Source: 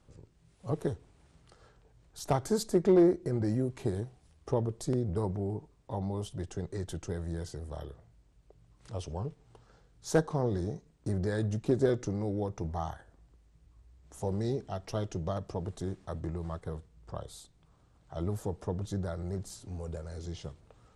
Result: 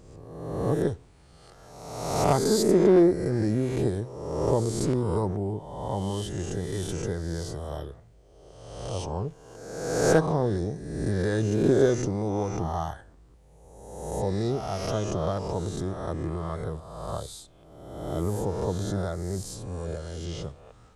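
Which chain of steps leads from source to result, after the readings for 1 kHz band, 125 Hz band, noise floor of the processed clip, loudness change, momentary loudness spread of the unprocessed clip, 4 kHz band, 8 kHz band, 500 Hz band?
+8.5 dB, +5.0 dB, -54 dBFS, +6.0 dB, 15 LU, +9.0 dB, +9.5 dB, +7.0 dB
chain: spectral swells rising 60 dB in 1.24 s; gain +3.5 dB

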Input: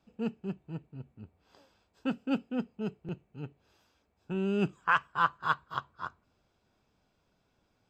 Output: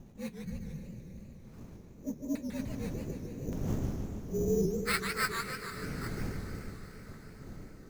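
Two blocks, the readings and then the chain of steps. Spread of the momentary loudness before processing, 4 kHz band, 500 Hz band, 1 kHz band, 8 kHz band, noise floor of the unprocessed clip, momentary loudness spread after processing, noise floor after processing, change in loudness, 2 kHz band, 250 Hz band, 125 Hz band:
17 LU, +3.5 dB, +2.5 dB, -9.5 dB, n/a, -75 dBFS, 19 LU, -52 dBFS, -2.5 dB, -3.0 dB, -1.0 dB, +4.0 dB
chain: inharmonic rescaling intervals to 117%; wind noise 200 Hz -38 dBFS; spectral repair 0.42–1.35, 250–4100 Hz; LFO low-pass square 0.85 Hz 460–5100 Hz; high shelf 3300 Hz +7.5 dB; sample-rate reducer 6400 Hz, jitter 0%; diffused feedback echo 0.486 s, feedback 57%, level -12.5 dB; warbling echo 0.148 s, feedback 59%, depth 208 cents, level -5.5 dB; gain -5 dB

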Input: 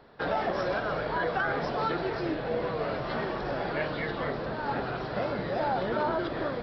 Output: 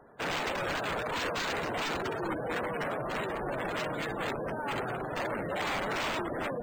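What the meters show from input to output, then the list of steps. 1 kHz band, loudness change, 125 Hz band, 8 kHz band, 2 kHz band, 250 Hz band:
-3.0 dB, -2.5 dB, -4.0 dB, n/a, -0.5 dB, -3.5 dB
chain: wrapped overs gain 25 dB; low shelf 130 Hz -4.5 dB; spectral gate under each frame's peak -15 dB strong; decimation joined by straight lines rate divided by 4×

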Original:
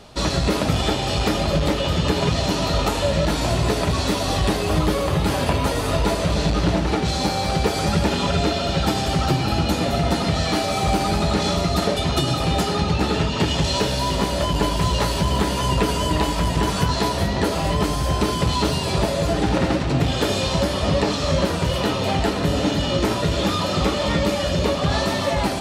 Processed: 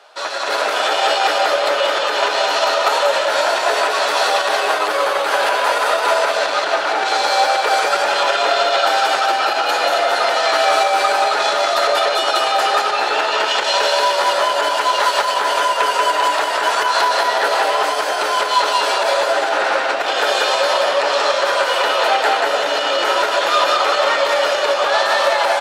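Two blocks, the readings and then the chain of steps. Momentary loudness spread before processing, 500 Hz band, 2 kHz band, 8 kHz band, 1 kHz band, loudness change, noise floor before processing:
1 LU, +5.5 dB, +11.0 dB, +3.0 dB, +10.0 dB, +5.0 dB, -24 dBFS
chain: high shelf 4200 Hz -9 dB; doubler 14 ms -12 dB; echo 0.184 s -3 dB; limiter -12.5 dBFS, peak gain reduction 8.5 dB; HPF 560 Hz 24 dB/oct; bell 1500 Hz +8 dB 0.28 oct; AGC gain up to 8.5 dB; gain +1.5 dB

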